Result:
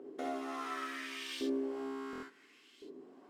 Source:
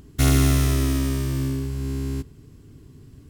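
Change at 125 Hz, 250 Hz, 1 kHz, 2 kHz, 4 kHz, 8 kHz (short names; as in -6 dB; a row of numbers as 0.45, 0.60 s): under -40 dB, -15.0 dB, -5.5 dB, -9.5 dB, -12.5 dB, -23.5 dB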